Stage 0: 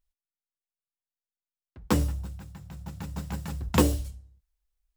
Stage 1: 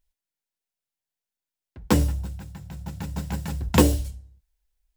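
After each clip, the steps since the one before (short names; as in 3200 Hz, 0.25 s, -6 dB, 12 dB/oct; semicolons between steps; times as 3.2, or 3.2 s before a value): notch 1200 Hz, Q 6.6; gain +4.5 dB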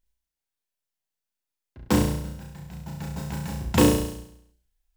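flutter echo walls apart 5.8 m, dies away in 0.72 s; gain -3 dB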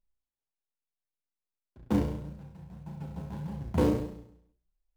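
median filter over 25 samples; flange 1.7 Hz, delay 4.7 ms, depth 7.7 ms, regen +35%; gain -2 dB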